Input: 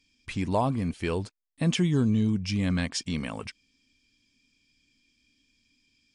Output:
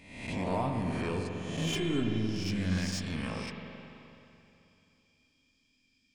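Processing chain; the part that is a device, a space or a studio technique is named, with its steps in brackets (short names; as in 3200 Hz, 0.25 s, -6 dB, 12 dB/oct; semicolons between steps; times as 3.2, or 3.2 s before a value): spectral swells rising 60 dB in 0.82 s; saturation between pre-emphasis and de-emphasis (high shelf 2400 Hz +10.5 dB; soft clip -18 dBFS, distortion -14 dB; high shelf 2400 Hz -10.5 dB); 1.67–2.15 comb 2.9 ms, depth 69%; spring tank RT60 2.9 s, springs 43/54 ms, chirp 70 ms, DRR 2 dB; gain -6.5 dB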